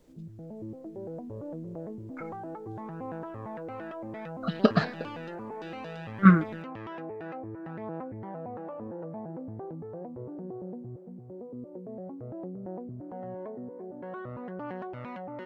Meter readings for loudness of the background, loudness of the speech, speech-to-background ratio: −40.5 LKFS, −23.0 LKFS, 17.5 dB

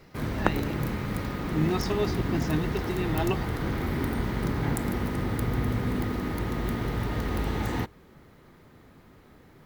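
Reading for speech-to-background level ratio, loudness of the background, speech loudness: −2.0 dB, −30.0 LKFS, −32.0 LKFS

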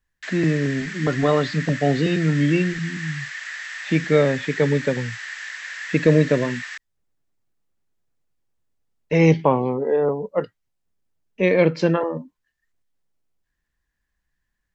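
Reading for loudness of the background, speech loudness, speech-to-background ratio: −31.5 LKFS, −21.0 LKFS, 10.5 dB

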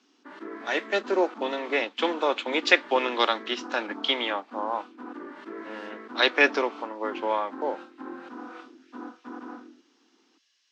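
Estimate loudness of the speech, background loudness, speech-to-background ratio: −26.0 LKFS, −41.5 LKFS, 15.5 dB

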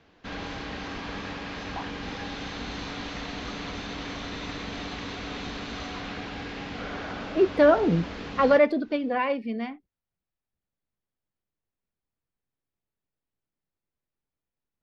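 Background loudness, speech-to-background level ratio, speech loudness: −35.5 LKFS, 12.0 dB, −23.5 LKFS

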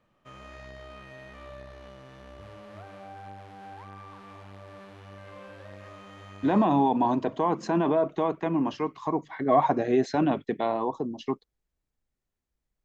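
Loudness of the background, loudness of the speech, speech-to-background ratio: −46.0 LKFS, −26.0 LKFS, 20.0 dB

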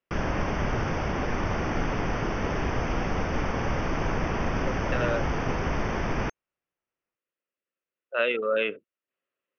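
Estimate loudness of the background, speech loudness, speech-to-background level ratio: −29.0 LKFS, −28.5 LKFS, 0.5 dB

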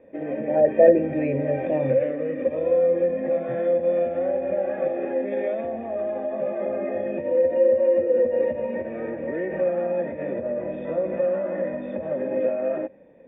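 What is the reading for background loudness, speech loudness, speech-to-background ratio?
−25.0 LKFS, −21.0 LKFS, 4.0 dB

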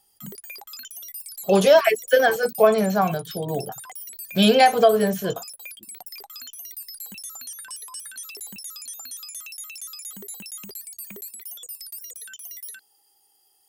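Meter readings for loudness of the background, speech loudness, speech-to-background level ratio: −35.5 LKFS, −19.0 LKFS, 16.5 dB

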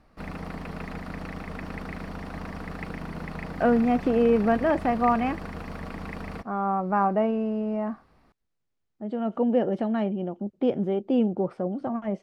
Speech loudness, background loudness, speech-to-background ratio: −25.5 LKFS, −37.0 LKFS, 11.5 dB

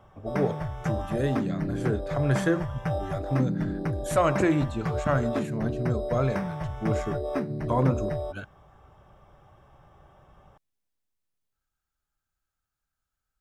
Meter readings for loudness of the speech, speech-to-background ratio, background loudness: −29.5 LKFS, 2.0 dB, −31.5 LKFS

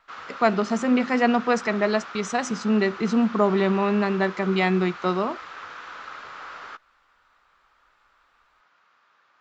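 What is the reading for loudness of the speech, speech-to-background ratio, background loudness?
−23.0 LKFS, 15.0 dB, −38.0 LKFS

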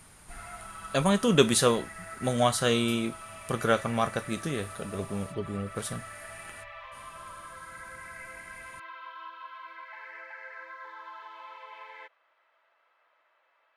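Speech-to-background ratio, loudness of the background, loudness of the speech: 16.0 dB, −44.0 LKFS, −28.0 LKFS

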